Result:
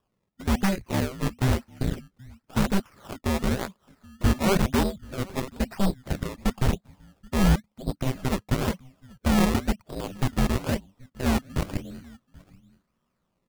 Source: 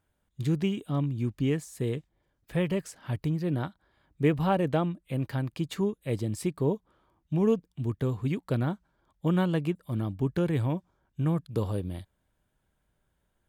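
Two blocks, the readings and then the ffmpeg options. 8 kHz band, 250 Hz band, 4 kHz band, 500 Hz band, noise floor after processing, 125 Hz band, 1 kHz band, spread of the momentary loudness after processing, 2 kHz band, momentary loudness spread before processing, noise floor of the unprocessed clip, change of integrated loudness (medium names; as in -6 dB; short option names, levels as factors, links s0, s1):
+10.5 dB, +2.5 dB, +9.0 dB, -0.5 dB, -77 dBFS, +1.0 dB, +5.0 dB, 12 LU, +7.5 dB, 8 LU, -76 dBFS, +2.5 dB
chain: -af "lowshelf=f=70:g=7,highpass=f=170:t=q:w=0.5412,highpass=f=170:t=q:w=1.307,lowpass=f=2800:t=q:w=0.5176,lowpass=f=2800:t=q:w=0.7071,lowpass=f=2800:t=q:w=1.932,afreqshift=-390,acrusher=samples=20:mix=1:aa=0.000001:lfo=1:lforange=20:lforate=0.98,aecho=1:1:782:0.0794,aeval=exprs='0.106*(cos(1*acos(clip(val(0)/0.106,-1,1)))-cos(1*PI/2))+0.0299*(cos(7*acos(clip(val(0)/0.106,-1,1)))-cos(7*PI/2))':c=same,volume=1.68"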